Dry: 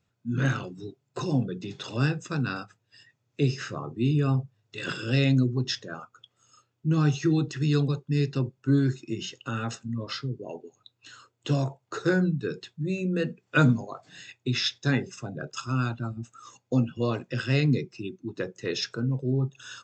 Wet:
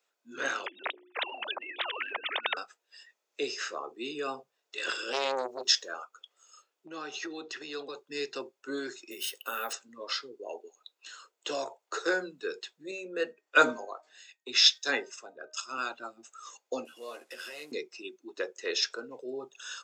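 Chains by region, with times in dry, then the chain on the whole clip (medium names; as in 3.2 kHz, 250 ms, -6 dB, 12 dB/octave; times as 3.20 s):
0.66–2.57 s: formants replaced by sine waves + hum notches 60/120/180/240/300/360 Hz + spectrum-flattening compressor 10:1
5.12–5.93 s: treble shelf 5.7 kHz +11 dB + transformer saturation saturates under 870 Hz
6.86–7.96 s: band-pass 120–5000 Hz + hum notches 60/120/180 Hz + compression 5:1, threshold -26 dBFS
9.11–9.73 s: band-stop 330 Hz, Q 7.7 + careless resampling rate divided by 3×, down filtered, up hold
12.91–15.78 s: de-hum 309.7 Hz, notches 6 + three bands expanded up and down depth 70%
16.85–17.72 s: CVSD coder 64 kbps + compression 2.5:1, threshold -42 dBFS + doubling 13 ms -4 dB
whole clip: high-pass 430 Hz 24 dB/octave; treble shelf 5.1 kHz +5 dB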